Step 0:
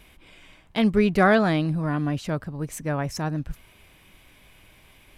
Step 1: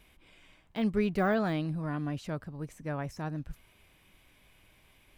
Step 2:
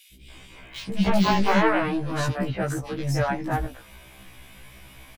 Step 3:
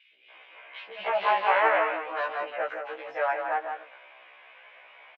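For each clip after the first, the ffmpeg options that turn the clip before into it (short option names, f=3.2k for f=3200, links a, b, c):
-af "deesser=0.9,volume=-8.5dB"
-filter_complex "[0:a]aeval=exprs='0.15*sin(PI/2*3.55*val(0)/0.15)':c=same,acrossover=split=370|2800[a][b][c];[a]adelay=130[d];[b]adelay=300[e];[d][e][c]amix=inputs=3:normalize=0,afftfilt=real='re*1.73*eq(mod(b,3),0)':imag='im*1.73*eq(mod(b,3),0)':win_size=2048:overlap=0.75,volume=3.5dB"
-af "asuperpass=centerf=1200:order=8:qfactor=0.52,aecho=1:1:166:0.473"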